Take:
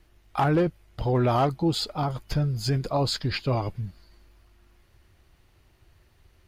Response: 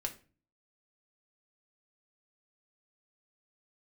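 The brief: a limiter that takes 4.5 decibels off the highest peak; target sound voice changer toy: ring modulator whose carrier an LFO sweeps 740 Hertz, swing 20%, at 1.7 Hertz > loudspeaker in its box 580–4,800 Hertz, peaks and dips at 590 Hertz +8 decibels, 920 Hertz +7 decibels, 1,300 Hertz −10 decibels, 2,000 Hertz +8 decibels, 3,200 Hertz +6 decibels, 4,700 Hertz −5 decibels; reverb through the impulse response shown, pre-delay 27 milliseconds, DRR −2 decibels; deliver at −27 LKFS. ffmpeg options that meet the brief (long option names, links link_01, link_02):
-filter_complex "[0:a]alimiter=limit=-18.5dB:level=0:latency=1,asplit=2[link_01][link_02];[1:a]atrim=start_sample=2205,adelay=27[link_03];[link_02][link_03]afir=irnorm=-1:irlink=0,volume=1.5dB[link_04];[link_01][link_04]amix=inputs=2:normalize=0,aeval=exprs='val(0)*sin(2*PI*740*n/s+740*0.2/1.7*sin(2*PI*1.7*n/s))':channel_layout=same,highpass=580,equalizer=frequency=590:width_type=q:width=4:gain=8,equalizer=frequency=920:width_type=q:width=4:gain=7,equalizer=frequency=1300:width_type=q:width=4:gain=-10,equalizer=frequency=2000:width_type=q:width=4:gain=8,equalizer=frequency=3200:width_type=q:width=4:gain=6,equalizer=frequency=4700:width_type=q:width=4:gain=-5,lowpass=frequency=4800:width=0.5412,lowpass=frequency=4800:width=1.3066,volume=-2.5dB"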